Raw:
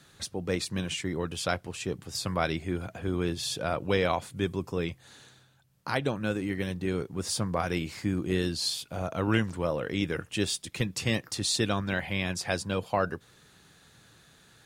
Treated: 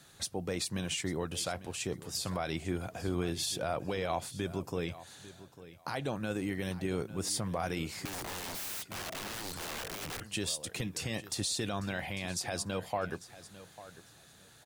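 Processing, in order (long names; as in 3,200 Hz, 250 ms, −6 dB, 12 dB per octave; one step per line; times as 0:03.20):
high-shelf EQ 5,900 Hz +8 dB
brickwall limiter −21 dBFS, peak gain reduction 10 dB
parametric band 720 Hz +5 dB 0.57 octaves
repeating echo 848 ms, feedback 20%, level −16.5 dB
0:08.05–0:10.22: wrap-around overflow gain 31.5 dB
level −3 dB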